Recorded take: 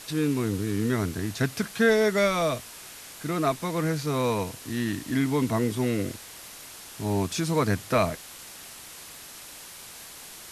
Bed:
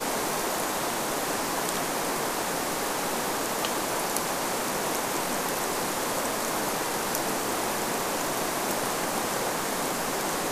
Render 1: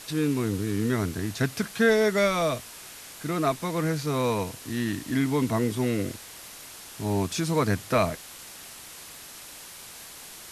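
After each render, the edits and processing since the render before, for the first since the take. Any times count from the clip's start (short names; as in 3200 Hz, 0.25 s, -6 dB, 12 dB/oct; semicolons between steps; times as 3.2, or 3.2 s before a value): nothing audible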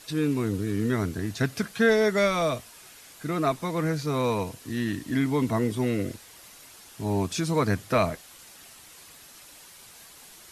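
denoiser 7 dB, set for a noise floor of -44 dBFS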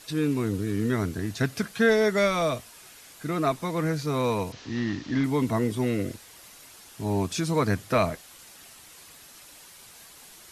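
4.52–5.24 delta modulation 32 kbps, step -39.5 dBFS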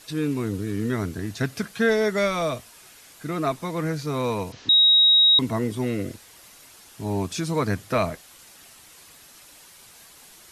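4.69–5.39 bleep 3800 Hz -12.5 dBFS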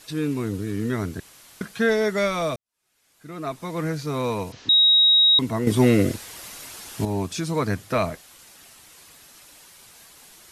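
1.2–1.61 room tone; 2.56–3.8 fade in quadratic; 5.67–7.05 gain +9.5 dB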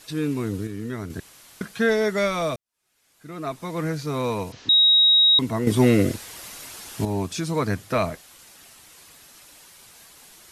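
0.67–1.1 gain -5.5 dB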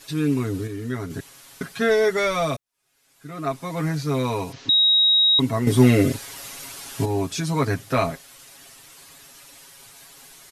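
comb 7.3 ms, depth 80%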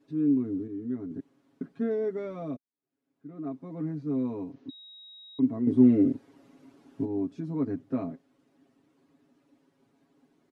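band-pass 270 Hz, Q 3.1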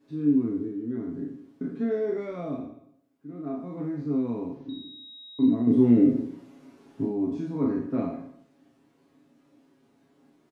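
spectral trails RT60 0.74 s; doubler 34 ms -3 dB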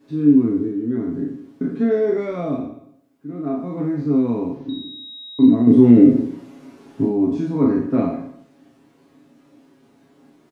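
gain +9 dB; limiter -1 dBFS, peak gain reduction 1.5 dB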